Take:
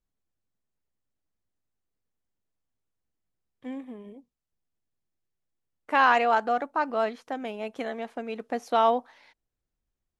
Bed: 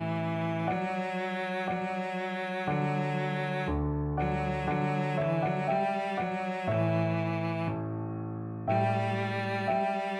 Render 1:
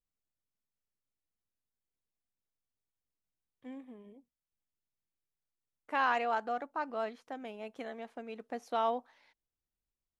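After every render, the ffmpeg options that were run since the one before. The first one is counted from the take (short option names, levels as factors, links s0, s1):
-af "volume=0.335"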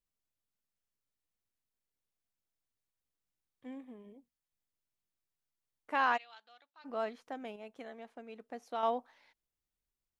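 -filter_complex "[0:a]asplit=3[s0][s1][s2];[s0]afade=t=out:st=6.16:d=0.02[s3];[s1]bandpass=f=3700:t=q:w=4.7,afade=t=in:st=6.16:d=0.02,afade=t=out:st=6.84:d=0.02[s4];[s2]afade=t=in:st=6.84:d=0.02[s5];[s3][s4][s5]amix=inputs=3:normalize=0,asplit=3[s6][s7][s8];[s6]atrim=end=7.562[s9];[s7]atrim=start=7.558:end=8.832,asetpts=PTS-STARTPTS,volume=0.562[s10];[s8]atrim=start=8.828[s11];[s9][s10]acrossfade=d=0.004:c1=hsin:c2=hsin[s12];[s12][s11]acrossfade=d=0.004:c1=hsin:c2=hsin"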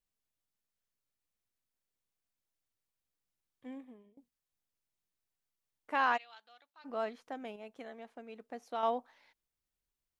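-filter_complex "[0:a]asplit=2[s0][s1];[s0]atrim=end=4.17,asetpts=PTS-STARTPTS,afade=t=out:st=3.77:d=0.4:silence=0.0841395[s2];[s1]atrim=start=4.17,asetpts=PTS-STARTPTS,afade=t=in:d=0.004:c=hsin:silence=0.0841395[s3];[s2][s3]concat=n=2:v=0:a=1"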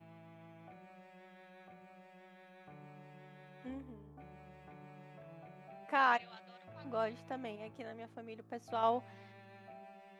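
-filter_complex "[1:a]volume=0.0531[s0];[0:a][s0]amix=inputs=2:normalize=0"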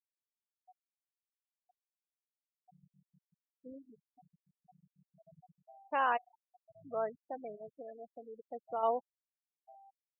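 -af "afftfilt=real='re*gte(hypot(re,im),0.0178)':imag='im*gte(hypot(re,im),0.0178)':win_size=1024:overlap=0.75,equalizer=f=250:t=o:w=1:g=-6,equalizer=f=500:t=o:w=1:g=4,equalizer=f=2000:t=o:w=1:g=-5"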